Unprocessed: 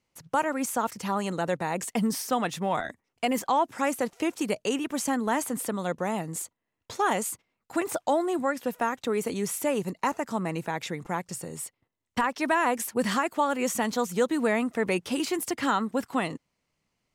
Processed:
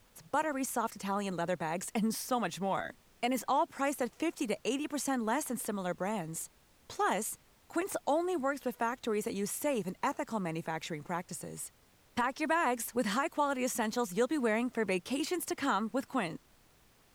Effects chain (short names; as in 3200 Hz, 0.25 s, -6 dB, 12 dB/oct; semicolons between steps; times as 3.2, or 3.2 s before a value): added noise pink -59 dBFS; gain -5.5 dB